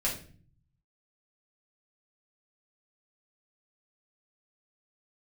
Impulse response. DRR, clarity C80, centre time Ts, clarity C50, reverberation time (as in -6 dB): -5.5 dB, 12.5 dB, 25 ms, 7.5 dB, 0.45 s